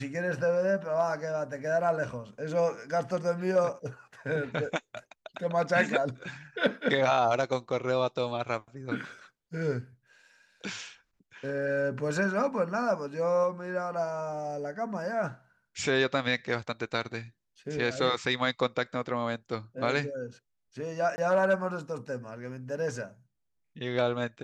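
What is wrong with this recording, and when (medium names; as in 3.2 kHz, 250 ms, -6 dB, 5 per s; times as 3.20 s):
21.16–21.18 s: dropout 20 ms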